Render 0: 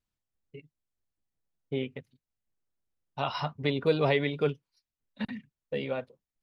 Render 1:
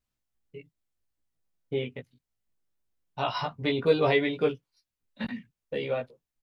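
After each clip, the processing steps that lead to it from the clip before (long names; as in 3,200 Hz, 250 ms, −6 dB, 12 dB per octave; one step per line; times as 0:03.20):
double-tracking delay 17 ms −2 dB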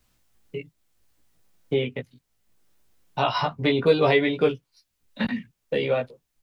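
multiband upward and downward compressor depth 40%
level +6 dB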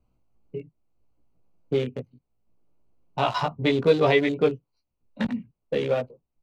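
adaptive Wiener filter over 25 samples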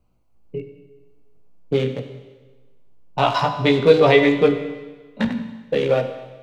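mains-hum notches 50/100/150/200/250/300/350/400 Hz
four-comb reverb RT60 1.3 s, combs from 31 ms, DRR 8 dB
level +5.5 dB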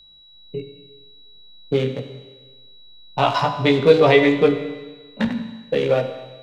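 steady tone 3,900 Hz −47 dBFS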